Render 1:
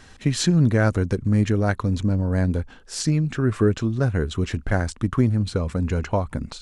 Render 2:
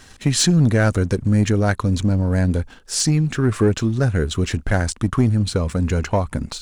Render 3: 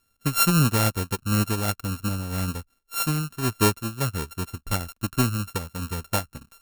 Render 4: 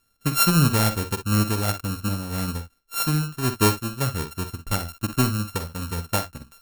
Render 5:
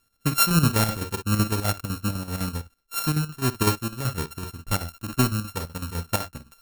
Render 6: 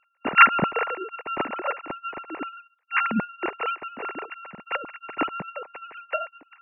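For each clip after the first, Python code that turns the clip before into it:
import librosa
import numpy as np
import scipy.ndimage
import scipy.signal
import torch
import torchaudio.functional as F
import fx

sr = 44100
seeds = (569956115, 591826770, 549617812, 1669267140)

y1 = fx.high_shelf(x, sr, hz=4900.0, db=8.0)
y1 = fx.leveller(y1, sr, passes=1)
y2 = np.r_[np.sort(y1[:len(y1) // 32 * 32].reshape(-1, 32), axis=1).ravel(), y1[len(y1) // 32 * 32:]]
y2 = fx.high_shelf(y2, sr, hz=6500.0, db=11.0)
y2 = fx.upward_expand(y2, sr, threshold_db=-28.0, expansion=2.5)
y2 = y2 * librosa.db_to_amplitude(-3.5)
y3 = fx.echo_multitap(y2, sr, ms=(47, 60), db=(-11.5, -13.0))
y3 = y3 * librosa.db_to_amplitude(1.0)
y4 = fx.chopper(y3, sr, hz=7.9, depth_pct=60, duty_pct=65)
y5 = fx.sine_speech(y4, sr)
y5 = y5 * librosa.db_to_amplitude(-1.0)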